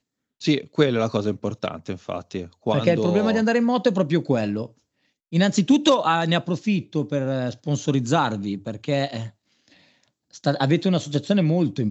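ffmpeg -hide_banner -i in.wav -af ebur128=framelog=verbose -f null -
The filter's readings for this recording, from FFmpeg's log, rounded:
Integrated loudness:
  I:         -22.5 LUFS
  Threshold: -33.1 LUFS
Loudness range:
  LRA:         4.5 LU
  Threshold: -43.0 LUFS
  LRA low:   -25.8 LUFS
  LRA high:  -21.2 LUFS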